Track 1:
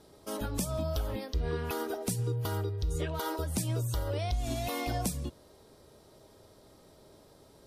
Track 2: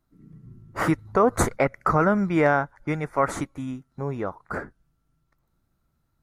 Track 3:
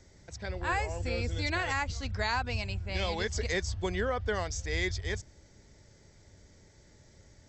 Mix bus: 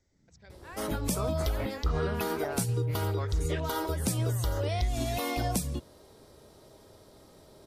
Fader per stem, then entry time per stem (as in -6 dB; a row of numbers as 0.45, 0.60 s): +2.5, -18.5, -16.0 dB; 0.50, 0.00, 0.00 s